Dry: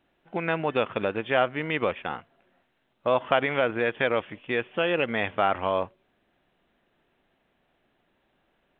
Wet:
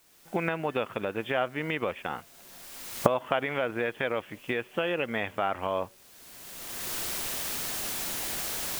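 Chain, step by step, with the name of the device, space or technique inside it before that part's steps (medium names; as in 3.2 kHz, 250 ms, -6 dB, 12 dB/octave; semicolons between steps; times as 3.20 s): cheap recorder with automatic gain (white noise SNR 29 dB; recorder AGC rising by 25 dB/s); trim -5.5 dB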